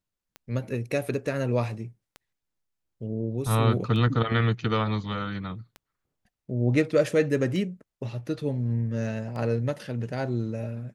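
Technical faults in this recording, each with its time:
tick 33 1/3 rpm -25 dBFS

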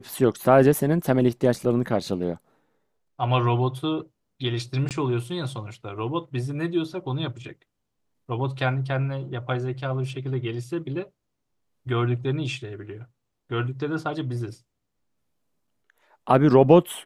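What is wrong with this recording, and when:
4.89–4.91 gap 18 ms

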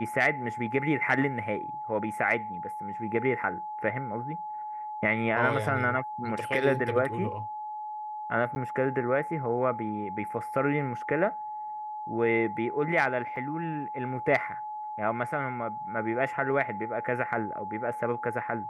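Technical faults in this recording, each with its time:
tone 850 Hz -34 dBFS
8.55–8.56 gap
13.36 gap 4.1 ms

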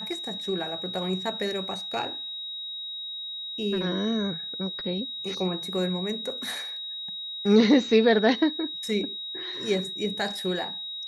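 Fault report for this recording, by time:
tone 3800 Hz -33 dBFS

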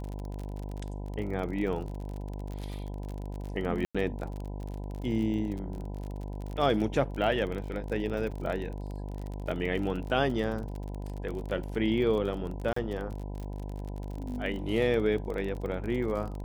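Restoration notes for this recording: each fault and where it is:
buzz 50 Hz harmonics 20 -37 dBFS
crackle 36/s -35 dBFS
3.85–3.95 gap 96 ms
8.31–8.32 gap 6 ms
12.73–12.76 gap 34 ms

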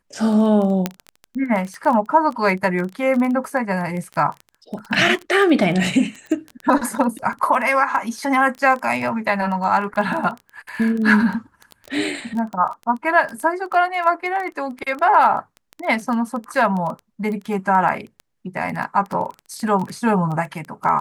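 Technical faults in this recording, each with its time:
crackle 15/s -24 dBFS
0.86 pop -5 dBFS

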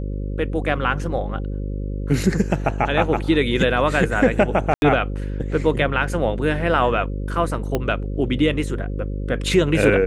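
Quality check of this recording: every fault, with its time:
buzz 50 Hz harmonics 11 -26 dBFS
4.74–4.82 gap 81 ms
7.75 pop -8 dBFS

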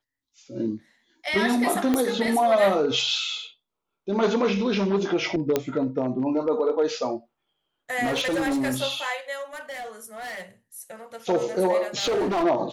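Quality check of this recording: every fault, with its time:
1.94 pop -10 dBFS
5.56 pop -8 dBFS
8.03–8.78 clipped -21 dBFS
9.53–10.42 clipped -32 dBFS
11.98–12.44 clipped -20 dBFS

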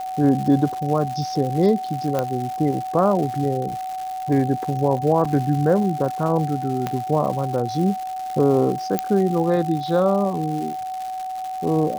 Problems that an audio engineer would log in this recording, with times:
crackle 270/s -28 dBFS
tone 750 Hz -26 dBFS
2.19 pop -9 dBFS
5.25 gap 4.4 ms
6.87 pop -10 dBFS
8.99 pop -6 dBFS

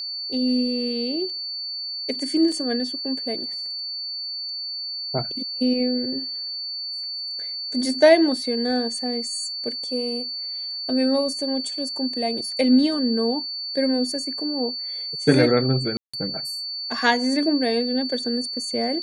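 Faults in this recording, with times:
tone 4500 Hz -28 dBFS
2.52 gap 4.1 ms
15.97–16.14 gap 0.165 s

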